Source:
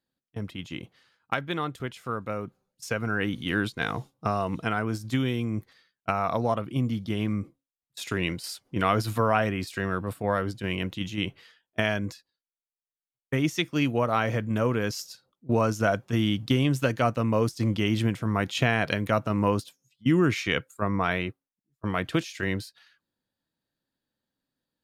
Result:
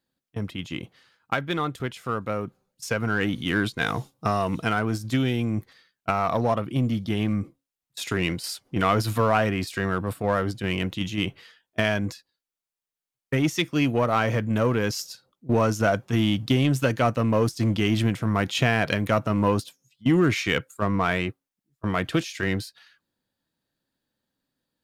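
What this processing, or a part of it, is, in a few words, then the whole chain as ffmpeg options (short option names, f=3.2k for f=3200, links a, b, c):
parallel distortion: -filter_complex "[0:a]asettb=1/sr,asplit=3[a][b][c];[a]atrim=end=3.784[d];[b]atrim=start=3.78:end=4.79,asetpts=PTS-STARTPTS,afade=t=in:d=0.004:c=qsin,afade=t=out:st=1.006:d=0.004:c=qsin,highshelf=f=3.8k:g=5.5[e];[c]atrim=start=4.786[f];[d][e]acrossfade=d=0.004:c1=hsin:c2=qsin[g];[g][f]acrossfade=d=0.004:c1=qsin:c2=hsin,asplit=2[h][i];[i]asoftclip=type=hard:threshold=-26dB,volume=-4.5dB[j];[h][j]amix=inputs=2:normalize=0"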